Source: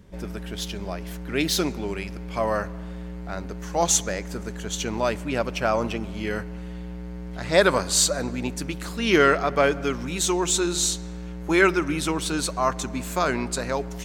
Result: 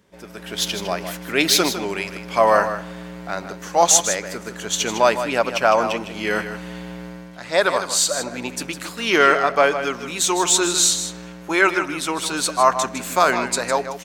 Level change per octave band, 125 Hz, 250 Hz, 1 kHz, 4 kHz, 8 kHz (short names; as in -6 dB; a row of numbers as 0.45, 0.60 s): -4.0, -0.5, +7.5, +6.0, +6.0 dB